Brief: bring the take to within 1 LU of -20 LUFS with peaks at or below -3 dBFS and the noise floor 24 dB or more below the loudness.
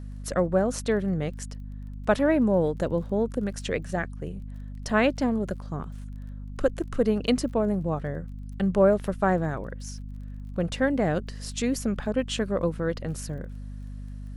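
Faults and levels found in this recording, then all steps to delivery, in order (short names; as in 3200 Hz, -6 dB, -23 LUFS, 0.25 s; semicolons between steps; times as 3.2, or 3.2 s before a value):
ticks 24/s; hum 50 Hz; harmonics up to 250 Hz; hum level -35 dBFS; loudness -27.0 LUFS; peak -8.5 dBFS; loudness target -20.0 LUFS
-> de-click; de-hum 50 Hz, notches 5; gain +7 dB; limiter -3 dBFS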